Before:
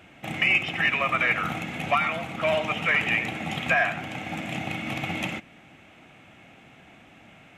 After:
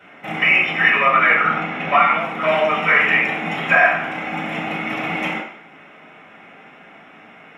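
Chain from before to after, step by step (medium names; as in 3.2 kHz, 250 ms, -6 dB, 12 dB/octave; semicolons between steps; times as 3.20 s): 1.05–2.17 s: low-pass 4.9 kHz 12 dB/octave; reverberation RT60 0.65 s, pre-delay 3 ms, DRR -8.5 dB; trim -7.5 dB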